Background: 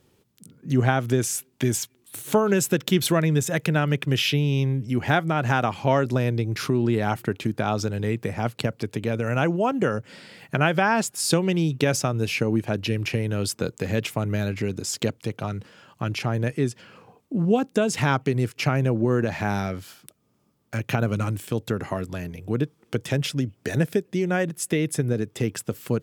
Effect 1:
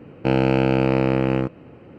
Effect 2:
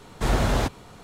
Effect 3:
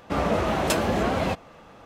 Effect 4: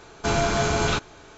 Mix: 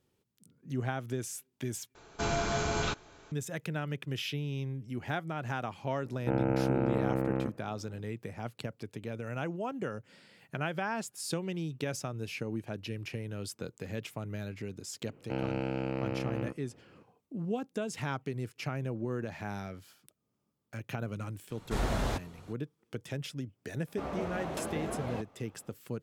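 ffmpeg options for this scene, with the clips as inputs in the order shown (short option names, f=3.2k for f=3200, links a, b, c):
-filter_complex "[1:a]asplit=2[a][b];[0:a]volume=-13.5dB[c];[a]lowpass=f=1.9k:w=0.5412,lowpass=f=1.9k:w=1.3066[d];[3:a]equalizer=f=350:w=0.31:g=4.5[e];[c]asplit=2[f][g];[f]atrim=end=1.954[h];[4:a]atrim=end=1.37,asetpts=PTS-STARTPTS,volume=-8.5dB[i];[g]atrim=start=3.316[j];[d]atrim=end=1.98,asetpts=PTS-STARTPTS,volume=-11dB,afade=t=in:d=0.004:c=hsin,afade=t=out:st=1.976:d=0.004:c=hsin,adelay=6020[k];[b]atrim=end=1.98,asetpts=PTS-STARTPTS,volume=-15.5dB,afade=t=in:d=0.004:c=hsin,afade=t=out:st=1.976:d=0.004:c=hsin,adelay=15050[l];[2:a]atrim=end=1.03,asetpts=PTS-STARTPTS,volume=-9dB,afade=t=in:d=0.004:c=hsin,afade=t=out:st=1.026:d=0.004:c=hsin,adelay=21500[m];[e]atrim=end=1.85,asetpts=PTS-STARTPTS,volume=-17dB,afade=t=in:d=0.004:c=hsin,afade=t=out:st=1.846:d=0.004:c=hsin,adelay=23870[n];[h][i]acrossfade=d=0.004:c1=hsin:c2=hsin[o];[o][j]acrossfade=d=0.004:c1=hsin:c2=hsin[p];[p][k][l][m][n]amix=inputs=5:normalize=0"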